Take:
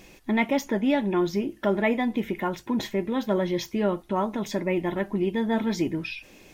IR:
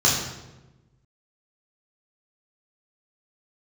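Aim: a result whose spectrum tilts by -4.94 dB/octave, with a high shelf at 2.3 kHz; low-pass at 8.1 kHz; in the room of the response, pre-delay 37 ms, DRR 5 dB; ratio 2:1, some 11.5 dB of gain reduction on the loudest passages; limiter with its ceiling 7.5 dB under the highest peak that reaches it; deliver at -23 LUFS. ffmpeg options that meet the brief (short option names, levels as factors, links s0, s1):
-filter_complex "[0:a]lowpass=8100,highshelf=f=2300:g=6,acompressor=threshold=0.01:ratio=2,alimiter=level_in=1.78:limit=0.0631:level=0:latency=1,volume=0.562,asplit=2[s0][s1];[1:a]atrim=start_sample=2205,adelay=37[s2];[s1][s2]afir=irnorm=-1:irlink=0,volume=0.0794[s3];[s0][s3]amix=inputs=2:normalize=0,volume=4.73"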